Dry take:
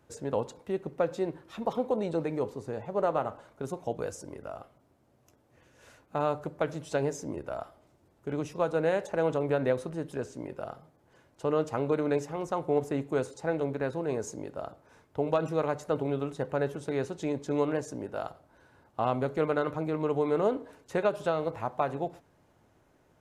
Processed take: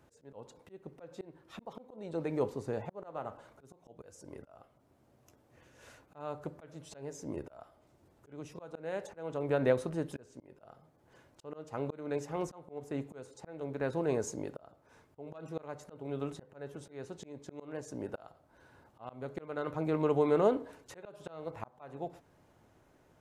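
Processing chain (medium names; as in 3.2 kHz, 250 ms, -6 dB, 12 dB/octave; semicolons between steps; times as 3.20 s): slow attack 535 ms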